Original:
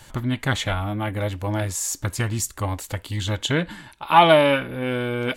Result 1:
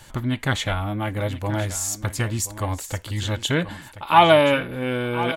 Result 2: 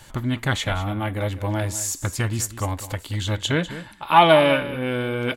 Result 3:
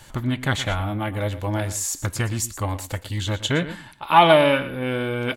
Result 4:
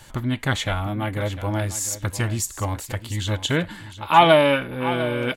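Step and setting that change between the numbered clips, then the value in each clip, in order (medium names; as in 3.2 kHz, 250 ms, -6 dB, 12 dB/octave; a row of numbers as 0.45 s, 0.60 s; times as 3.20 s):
delay, time: 1029 ms, 199 ms, 117 ms, 701 ms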